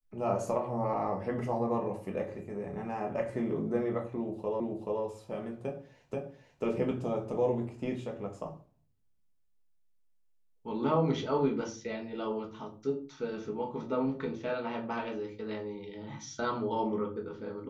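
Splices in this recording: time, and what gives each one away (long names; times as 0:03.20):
0:04.60: the same again, the last 0.43 s
0:06.14: the same again, the last 0.49 s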